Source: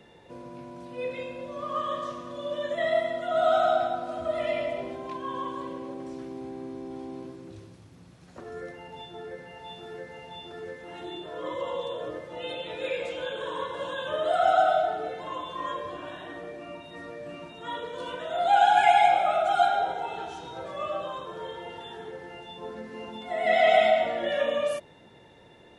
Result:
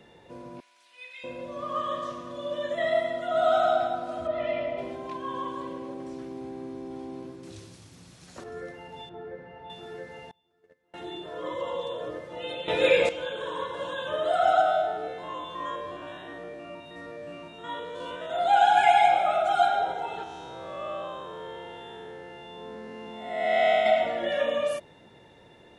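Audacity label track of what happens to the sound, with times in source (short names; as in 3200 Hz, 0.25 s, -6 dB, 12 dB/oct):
0.600000	1.240000	Chebyshev high-pass 2400 Hz
4.270000	4.780000	air absorption 180 m
7.430000	8.440000	bell 7500 Hz +12 dB 2.8 oct
9.090000	9.700000	Bessel low-pass 1600 Hz
10.310000	10.940000	gate -35 dBFS, range -30 dB
12.680000	13.090000	gain +10.5 dB
14.610000	18.300000	stepped spectrum every 50 ms
20.230000	23.860000	time blur width 0.21 s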